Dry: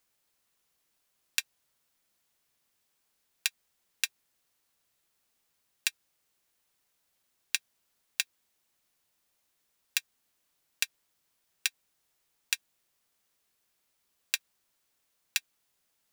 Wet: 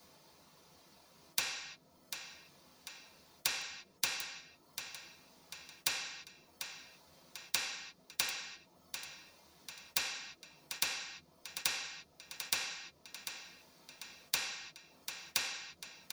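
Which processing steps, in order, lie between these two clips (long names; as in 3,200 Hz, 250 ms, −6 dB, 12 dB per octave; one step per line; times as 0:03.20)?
reverb reduction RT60 0.87 s
dynamic equaliser 940 Hz, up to +4 dB, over −52 dBFS, Q 1.2
repeating echo 744 ms, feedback 30%, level −18.5 dB
convolution reverb RT60 0.55 s, pre-delay 3 ms, DRR −11 dB
every bin compressed towards the loudest bin 2 to 1
level −4.5 dB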